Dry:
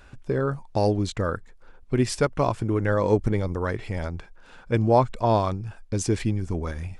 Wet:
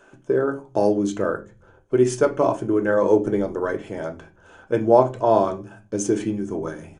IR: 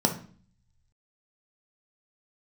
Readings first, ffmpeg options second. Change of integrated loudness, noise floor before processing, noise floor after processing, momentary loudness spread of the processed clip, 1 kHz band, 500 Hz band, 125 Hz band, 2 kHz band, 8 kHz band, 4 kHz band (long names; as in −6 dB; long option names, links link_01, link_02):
+3.5 dB, −50 dBFS, −54 dBFS, 13 LU, +2.0 dB, +6.0 dB, −7.0 dB, +1.5 dB, +2.0 dB, can't be measured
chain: -filter_complex "[0:a]equalizer=frequency=250:width_type=o:width=0.33:gain=-8,equalizer=frequency=630:width_type=o:width=0.33:gain=6,equalizer=frequency=3150:width_type=o:width=0.33:gain=6,equalizer=frequency=6300:width_type=o:width=0.33:gain=12[link_01];[1:a]atrim=start_sample=2205,asetrate=74970,aresample=44100[link_02];[link_01][link_02]afir=irnorm=-1:irlink=0,aresample=22050,aresample=44100,volume=-10dB"